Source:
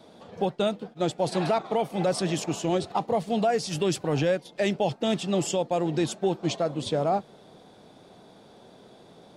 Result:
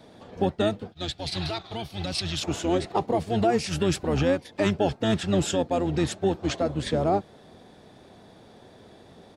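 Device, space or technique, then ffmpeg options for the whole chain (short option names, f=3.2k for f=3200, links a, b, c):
octave pedal: -filter_complex "[0:a]asplit=2[a][b];[b]asetrate=22050,aresample=44100,atempo=2,volume=-4dB[c];[a][c]amix=inputs=2:normalize=0,asettb=1/sr,asplit=3[d][e][f];[d]atrim=end=0.924[g];[e]atrim=start=0.92:end=2.43,asetpts=PTS-STARTPTS,afade=t=in:d=0.004:c=qsin,afade=t=out:st=1.506:d=0.004:c=qsin,equalizer=f=250:t=o:w=1:g=-10,equalizer=f=500:t=o:w=1:g=-11,equalizer=f=1k:t=o:w=1:g=-6,equalizer=f=2k:t=o:w=1:g=-4,equalizer=f=4k:t=o:w=1:g=10,equalizer=f=8k:t=o:w=1:g=-5[h];[f]atrim=start=2.426[i];[g][h]acrossfade=d=0.004:c1=hsin:c2=qsin[j];[j][i]acrossfade=d=0.004:c1=qsin:c2=hsin"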